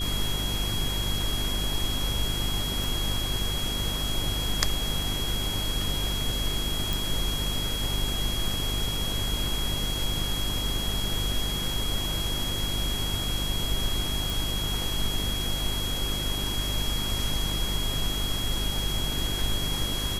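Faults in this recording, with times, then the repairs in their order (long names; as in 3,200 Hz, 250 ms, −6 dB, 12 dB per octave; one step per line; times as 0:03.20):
mains hum 50 Hz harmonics 8 −33 dBFS
whistle 3,300 Hz −31 dBFS
0:02.84: click
0:06.93: click
0:14.30: click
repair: click removal
hum removal 50 Hz, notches 8
notch filter 3,300 Hz, Q 30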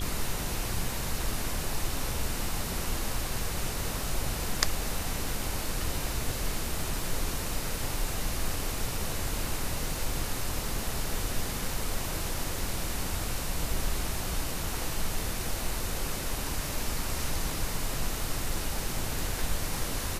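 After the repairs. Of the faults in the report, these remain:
none of them is left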